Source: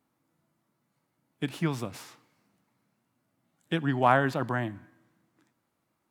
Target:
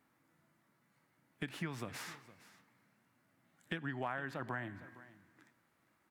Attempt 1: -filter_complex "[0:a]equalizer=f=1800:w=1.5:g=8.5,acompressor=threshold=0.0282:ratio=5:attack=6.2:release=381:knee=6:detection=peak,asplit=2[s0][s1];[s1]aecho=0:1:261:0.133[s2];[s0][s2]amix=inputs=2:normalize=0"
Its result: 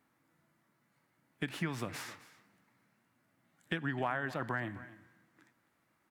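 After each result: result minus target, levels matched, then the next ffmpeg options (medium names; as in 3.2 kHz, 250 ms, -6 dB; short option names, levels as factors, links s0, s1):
echo 200 ms early; compression: peak gain reduction -5 dB
-filter_complex "[0:a]equalizer=f=1800:w=1.5:g=8.5,acompressor=threshold=0.0282:ratio=5:attack=6.2:release=381:knee=6:detection=peak,asplit=2[s0][s1];[s1]aecho=0:1:461:0.133[s2];[s0][s2]amix=inputs=2:normalize=0"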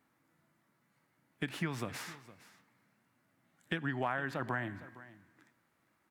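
compression: peak gain reduction -5 dB
-filter_complex "[0:a]equalizer=f=1800:w=1.5:g=8.5,acompressor=threshold=0.0141:ratio=5:attack=6.2:release=381:knee=6:detection=peak,asplit=2[s0][s1];[s1]aecho=0:1:461:0.133[s2];[s0][s2]amix=inputs=2:normalize=0"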